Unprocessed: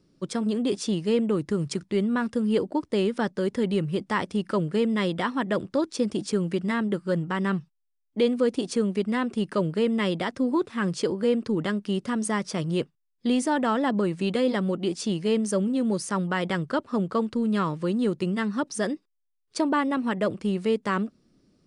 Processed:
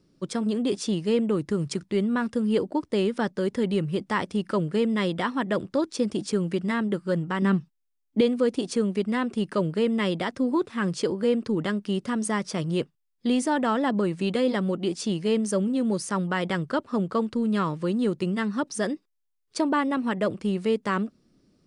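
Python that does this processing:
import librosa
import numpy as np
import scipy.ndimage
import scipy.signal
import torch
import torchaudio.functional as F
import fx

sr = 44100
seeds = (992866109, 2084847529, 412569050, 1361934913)

y = fx.peak_eq(x, sr, hz=250.0, db=9.0, octaves=0.77, at=(7.42, 8.21))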